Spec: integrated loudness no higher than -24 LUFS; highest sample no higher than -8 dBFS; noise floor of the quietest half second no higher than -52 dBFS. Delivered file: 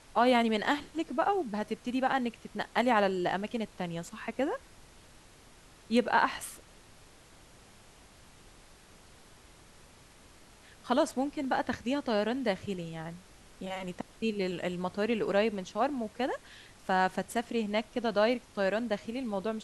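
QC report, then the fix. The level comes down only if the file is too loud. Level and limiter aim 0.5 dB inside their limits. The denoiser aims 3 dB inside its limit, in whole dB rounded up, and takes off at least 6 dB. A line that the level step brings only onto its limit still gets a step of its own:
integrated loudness -31.5 LUFS: pass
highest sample -13.0 dBFS: pass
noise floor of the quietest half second -56 dBFS: pass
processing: none needed

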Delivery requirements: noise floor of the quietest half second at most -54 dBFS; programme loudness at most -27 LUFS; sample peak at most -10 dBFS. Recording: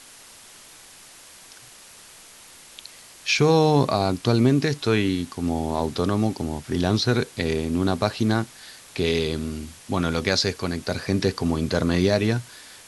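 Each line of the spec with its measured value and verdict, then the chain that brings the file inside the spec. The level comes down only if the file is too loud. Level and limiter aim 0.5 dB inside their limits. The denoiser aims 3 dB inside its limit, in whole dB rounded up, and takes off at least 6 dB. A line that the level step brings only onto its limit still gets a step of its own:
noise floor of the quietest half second -47 dBFS: fail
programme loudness -23.0 LUFS: fail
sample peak -5.0 dBFS: fail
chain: noise reduction 6 dB, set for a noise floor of -47 dBFS; trim -4.5 dB; peak limiter -10.5 dBFS

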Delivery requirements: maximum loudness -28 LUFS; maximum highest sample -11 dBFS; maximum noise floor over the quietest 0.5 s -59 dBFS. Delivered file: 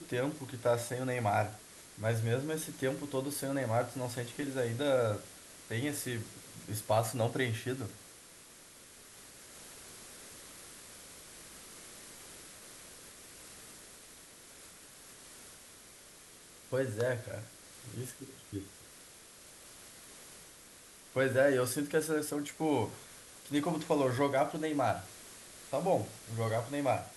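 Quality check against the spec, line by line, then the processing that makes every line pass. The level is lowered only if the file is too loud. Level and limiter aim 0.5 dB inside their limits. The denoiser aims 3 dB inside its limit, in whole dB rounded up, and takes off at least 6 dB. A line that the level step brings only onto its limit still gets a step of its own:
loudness -34.0 LUFS: pass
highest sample -16.5 dBFS: pass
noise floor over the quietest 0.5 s -55 dBFS: fail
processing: noise reduction 7 dB, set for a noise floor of -55 dBFS

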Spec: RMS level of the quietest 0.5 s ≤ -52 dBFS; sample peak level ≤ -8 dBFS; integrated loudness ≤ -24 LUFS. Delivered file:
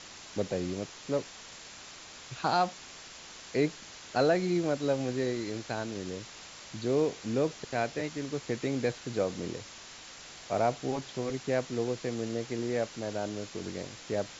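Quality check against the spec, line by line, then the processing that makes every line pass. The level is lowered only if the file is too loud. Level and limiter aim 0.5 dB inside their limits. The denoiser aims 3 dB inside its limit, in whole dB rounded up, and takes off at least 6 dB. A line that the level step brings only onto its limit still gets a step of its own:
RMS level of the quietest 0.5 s -48 dBFS: fail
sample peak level -14.5 dBFS: pass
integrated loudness -32.5 LUFS: pass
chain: noise reduction 7 dB, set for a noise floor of -48 dBFS

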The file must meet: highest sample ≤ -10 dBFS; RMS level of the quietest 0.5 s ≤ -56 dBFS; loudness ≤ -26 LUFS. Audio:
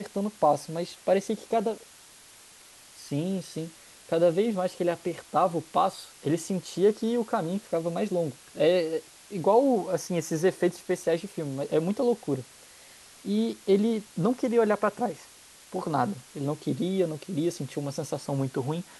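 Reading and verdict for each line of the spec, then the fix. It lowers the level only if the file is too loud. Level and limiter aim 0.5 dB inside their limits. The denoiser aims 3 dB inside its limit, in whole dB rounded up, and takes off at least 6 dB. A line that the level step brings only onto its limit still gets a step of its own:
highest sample -10.5 dBFS: pass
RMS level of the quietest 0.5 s -52 dBFS: fail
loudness -28.0 LUFS: pass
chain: noise reduction 7 dB, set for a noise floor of -52 dBFS

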